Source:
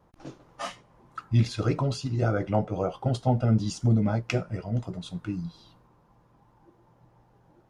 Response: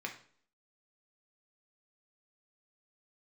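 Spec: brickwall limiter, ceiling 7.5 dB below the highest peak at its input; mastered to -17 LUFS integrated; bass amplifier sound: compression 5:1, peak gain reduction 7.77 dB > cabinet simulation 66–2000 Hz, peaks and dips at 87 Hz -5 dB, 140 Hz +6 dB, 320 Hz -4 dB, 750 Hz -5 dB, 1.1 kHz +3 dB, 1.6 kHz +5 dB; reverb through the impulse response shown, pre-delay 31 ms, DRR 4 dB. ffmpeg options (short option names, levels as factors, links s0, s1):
-filter_complex "[0:a]alimiter=limit=0.112:level=0:latency=1,asplit=2[s0][s1];[1:a]atrim=start_sample=2205,adelay=31[s2];[s1][s2]afir=irnorm=-1:irlink=0,volume=0.531[s3];[s0][s3]amix=inputs=2:normalize=0,acompressor=threshold=0.0447:ratio=5,highpass=f=66:w=0.5412,highpass=f=66:w=1.3066,equalizer=f=87:t=q:w=4:g=-5,equalizer=f=140:t=q:w=4:g=6,equalizer=f=320:t=q:w=4:g=-4,equalizer=f=750:t=q:w=4:g=-5,equalizer=f=1100:t=q:w=4:g=3,equalizer=f=1600:t=q:w=4:g=5,lowpass=f=2000:w=0.5412,lowpass=f=2000:w=1.3066,volume=5.96"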